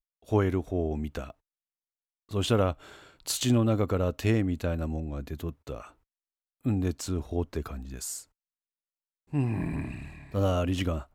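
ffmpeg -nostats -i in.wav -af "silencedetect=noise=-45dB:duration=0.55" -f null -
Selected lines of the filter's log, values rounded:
silence_start: 1.31
silence_end: 2.31 | silence_duration: 1.00
silence_start: 5.89
silence_end: 6.65 | silence_duration: 0.76
silence_start: 8.23
silence_end: 9.33 | silence_duration: 1.10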